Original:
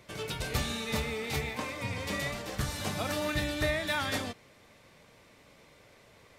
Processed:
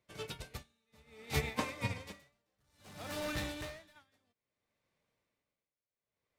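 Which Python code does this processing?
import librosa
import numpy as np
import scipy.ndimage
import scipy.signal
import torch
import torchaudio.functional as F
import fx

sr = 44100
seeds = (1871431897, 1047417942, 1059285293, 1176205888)

y = fx.clip_hard(x, sr, threshold_db=-33.5, at=(2.12, 3.96))
y = y * (1.0 - 0.9 / 2.0 + 0.9 / 2.0 * np.cos(2.0 * np.pi * 0.6 * (np.arange(len(y)) / sr)))
y = fx.upward_expand(y, sr, threshold_db=-51.0, expansion=2.5)
y = y * 10.0 ** (4.0 / 20.0)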